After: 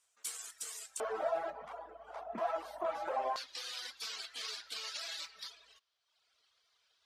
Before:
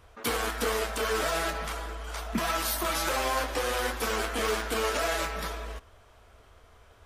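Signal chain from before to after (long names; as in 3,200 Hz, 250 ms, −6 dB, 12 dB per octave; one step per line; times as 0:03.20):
reverb reduction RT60 1.1 s
resonant band-pass 7,800 Hz, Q 2.9, from 0:01.00 710 Hz, from 0:03.36 4,400 Hz
level +1.5 dB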